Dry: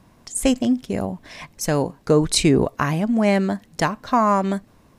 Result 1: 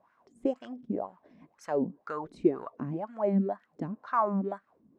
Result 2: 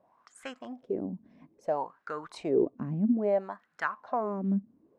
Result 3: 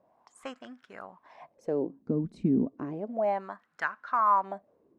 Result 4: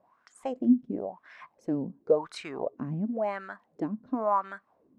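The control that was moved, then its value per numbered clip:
wah, rate: 2, 0.6, 0.32, 0.94 Hz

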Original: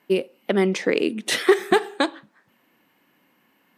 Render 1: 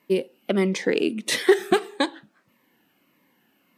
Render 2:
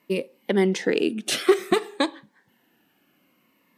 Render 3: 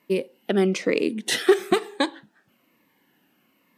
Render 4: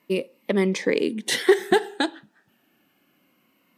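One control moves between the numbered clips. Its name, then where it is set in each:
cascading phaser, rate: 1.6, 0.56, 1.1, 0.25 Hz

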